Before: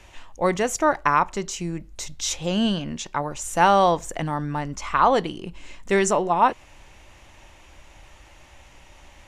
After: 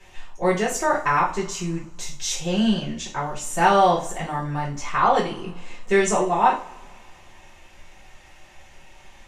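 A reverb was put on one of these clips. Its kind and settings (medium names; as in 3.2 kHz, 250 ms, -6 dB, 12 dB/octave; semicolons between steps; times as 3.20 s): two-slope reverb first 0.35 s, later 2.1 s, from -27 dB, DRR -7.5 dB; trim -7.5 dB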